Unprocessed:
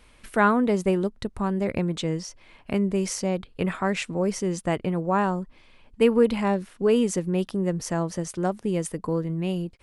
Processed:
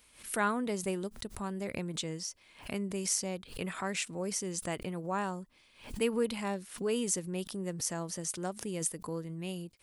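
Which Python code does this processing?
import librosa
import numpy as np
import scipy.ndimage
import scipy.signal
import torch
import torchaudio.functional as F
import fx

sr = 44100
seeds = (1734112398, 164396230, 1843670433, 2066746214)

y = fx.highpass(x, sr, hz=64.0, slope=6)
y = F.preemphasis(torch.from_numpy(y), 0.8).numpy()
y = fx.pre_swell(y, sr, db_per_s=130.0)
y = y * librosa.db_to_amplitude(2.0)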